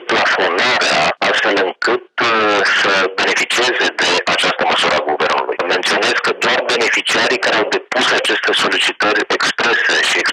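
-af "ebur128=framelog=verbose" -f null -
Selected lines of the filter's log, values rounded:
Integrated loudness:
  I:         -13.6 LUFS
  Threshold: -23.6 LUFS
Loudness range:
  LRA:         0.8 LU
  Threshold: -33.7 LUFS
  LRA low:   -14.1 LUFS
  LRA high:  -13.3 LUFS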